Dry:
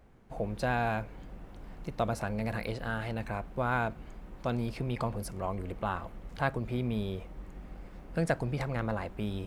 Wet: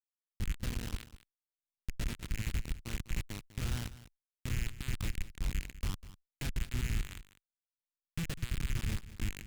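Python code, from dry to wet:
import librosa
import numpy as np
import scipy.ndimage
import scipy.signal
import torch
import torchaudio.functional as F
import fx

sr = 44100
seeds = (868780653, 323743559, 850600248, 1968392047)

p1 = fx.rattle_buzz(x, sr, strikes_db=-34.0, level_db=-20.0)
p2 = fx.high_shelf(p1, sr, hz=11000.0, db=-3.5)
p3 = fx.rider(p2, sr, range_db=10, speed_s=0.5)
p4 = p2 + (p3 * librosa.db_to_amplitude(-0.5))
p5 = fx.schmitt(p4, sr, flips_db=-20.5)
p6 = fx.tone_stack(p5, sr, knobs='6-0-2')
p7 = p6 + 10.0 ** (-16.0 / 20.0) * np.pad(p6, (int(199 * sr / 1000.0), 0))[:len(p6)]
p8 = fx.doppler_dist(p7, sr, depth_ms=0.14)
y = p8 * librosa.db_to_amplitude(10.5)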